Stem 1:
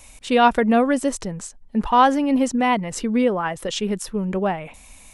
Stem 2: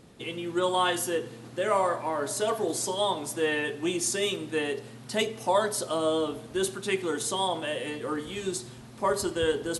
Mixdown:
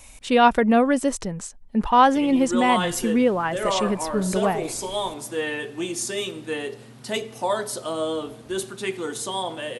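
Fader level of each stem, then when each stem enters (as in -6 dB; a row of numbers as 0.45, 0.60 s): -0.5, 0.0 dB; 0.00, 1.95 s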